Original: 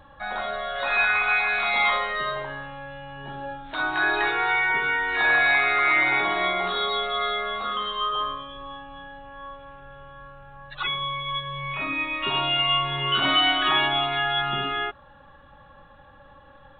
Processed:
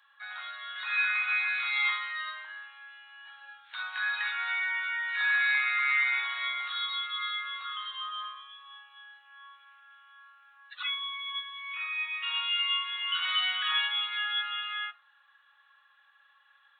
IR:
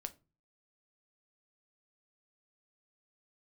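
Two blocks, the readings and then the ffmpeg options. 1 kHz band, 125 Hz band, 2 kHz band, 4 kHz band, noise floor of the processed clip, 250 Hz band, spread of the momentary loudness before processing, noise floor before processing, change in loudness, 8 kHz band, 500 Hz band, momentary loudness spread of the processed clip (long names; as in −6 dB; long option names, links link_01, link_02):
−12.5 dB, below −40 dB, −6.0 dB, −5.5 dB, −64 dBFS, below −40 dB, 19 LU, −51 dBFS, −6.5 dB, can't be measured, below −35 dB, 18 LU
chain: -filter_complex "[0:a]highpass=frequency=1400:width=0.5412,highpass=frequency=1400:width=1.3066[link_01];[1:a]atrim=start_sample=2205[link_02];[link_01][link_02]afir=irnorm=-1:irlink=0,volume=-1.5dB"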